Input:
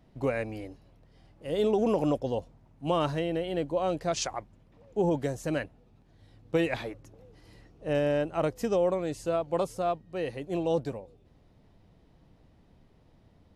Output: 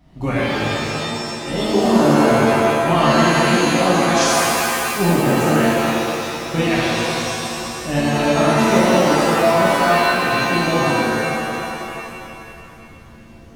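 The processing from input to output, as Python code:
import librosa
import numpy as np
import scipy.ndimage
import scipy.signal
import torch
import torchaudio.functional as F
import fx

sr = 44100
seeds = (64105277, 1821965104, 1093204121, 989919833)

y = fx.peak_eq(x, sr, hz=460.0, db=-14.0, octaves=0.37)
y = fx.rev_shimmer(y, sr, seeds[0], rt60_s=2.5, semitones=7, shimmer_db=-2, drr_db=-8.5)
y = y * 10.0 ** (5.5 / 20.0)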